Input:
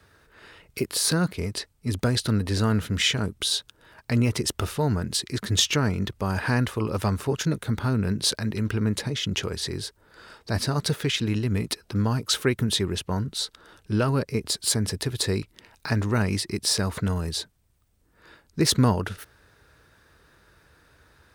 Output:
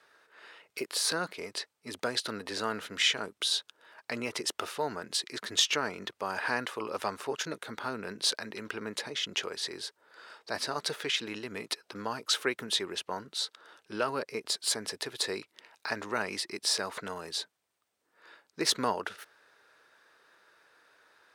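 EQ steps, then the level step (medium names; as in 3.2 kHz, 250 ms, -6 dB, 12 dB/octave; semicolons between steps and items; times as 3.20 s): high-pass 510 Hz 12 dB/octave; treble shelf 9.1 kHz -10.5 dB; -2.0 dB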